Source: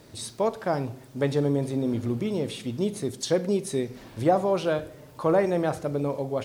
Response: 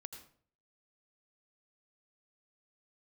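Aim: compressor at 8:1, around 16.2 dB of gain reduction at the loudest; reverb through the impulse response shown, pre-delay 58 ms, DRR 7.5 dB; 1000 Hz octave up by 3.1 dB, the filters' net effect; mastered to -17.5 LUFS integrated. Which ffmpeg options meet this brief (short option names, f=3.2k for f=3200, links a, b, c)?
-filter_complex "[0:a]equalizer=f=1k:t=o:g=4.5,acompressor=threshold=-32dB:ratio=8,asplit=2[a][b];[1:a]atrim=start_sample=2205,adelay=58[c];[b][c]afir=irnorm=-1:irlink=0,volume=-2.5dB[d];[a][d]amix=inputs=2:normalize=0,volume=18.5dB"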